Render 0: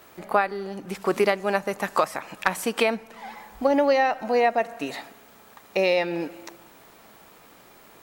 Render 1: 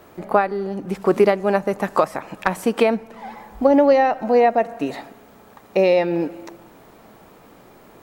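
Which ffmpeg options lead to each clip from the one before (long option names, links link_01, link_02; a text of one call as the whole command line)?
ffmpeg -i in.wav -af "tiltshelf=frequency=1100:gain=6,volume=2.5dB" out.wav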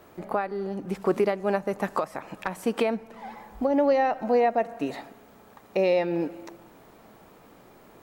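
ffmpeg -i in.wav -af "alimiter=limit=-8.5dB:level=0:latency=1:release=288,volume=-5dB" out.wav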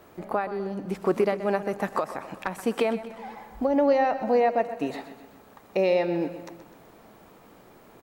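ffmpeg -i in.wav -af "aecho=1:1:127|254|381|508|635:0.224|0.112|0.056|0.028|0.014" out.wav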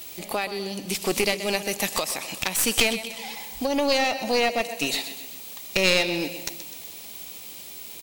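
ffmpeg -i in.wav -af "aexciter=amount=11.6:drive=6.1:freq=2300,aeval=exprs='clip(val(0),-1,0.0708)':channel_layout=same,volume=-1dB" out.wav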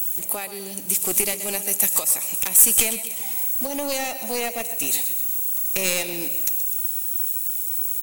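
ffmpeg -i in.wav -filter_complex "[0:a]acrossover=split=350[link_01][link_02];[link_01]acrusher=bits=2:mode=log:mix=0:aa=0.000001[link_03];[link_02]aexciter=amount=5.1:drive=8.7:freq=6800[link_04];[link_03][link_04]amix=inputs=2:normalize=0,volume=-5dB" out.wav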